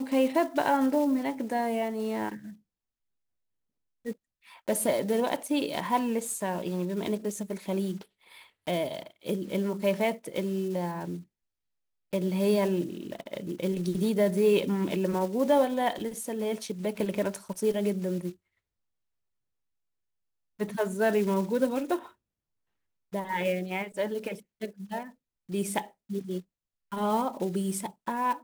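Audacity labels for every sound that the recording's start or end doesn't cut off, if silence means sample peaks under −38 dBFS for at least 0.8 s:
4.060000	11.200000	sound
12.130000	18.310000	sound
20.600000	22.060000	sound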